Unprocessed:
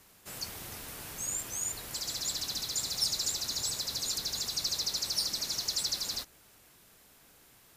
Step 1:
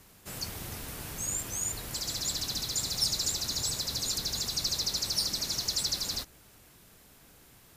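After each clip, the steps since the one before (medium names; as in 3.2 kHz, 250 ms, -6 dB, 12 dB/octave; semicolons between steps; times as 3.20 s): bass shelf 280 Hz +7.5 dB; trim +1.5 dB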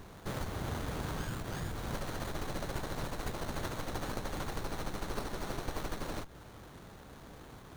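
compression 6:1, threshold -40 dBFS, peak gain reduction 15.5 dB; sliding maximum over 17 samples; trim +8.5 dB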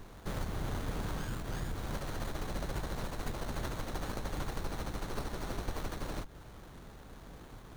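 octave divider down 2 oct, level +2 dB; trim -1.5 dB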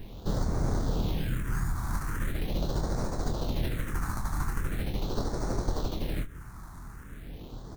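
doubling 25 ms -7.5 dB; phase shifter stages 4, 0.41 Hz, lowest notch 480–2900 Hz; trim +6.5 dB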